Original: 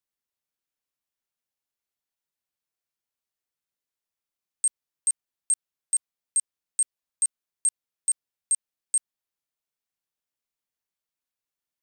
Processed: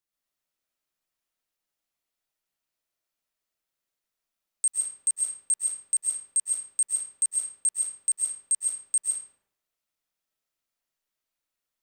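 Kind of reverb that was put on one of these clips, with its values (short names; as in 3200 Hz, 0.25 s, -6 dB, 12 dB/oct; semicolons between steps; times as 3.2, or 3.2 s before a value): digital reverb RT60 0.72 s, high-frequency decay 0.7×, pre-delay 95 ms, DRR -4 dB; gain -1 dB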